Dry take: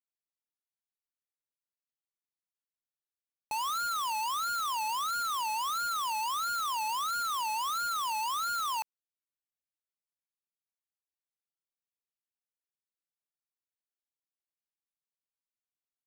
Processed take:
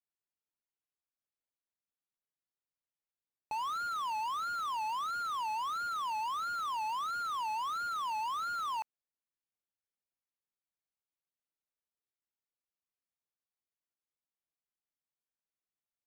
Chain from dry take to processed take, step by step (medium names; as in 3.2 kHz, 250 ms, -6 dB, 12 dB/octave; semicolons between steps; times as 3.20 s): low-pass 1.7 kHz 6 dB/octave; trim -1 dB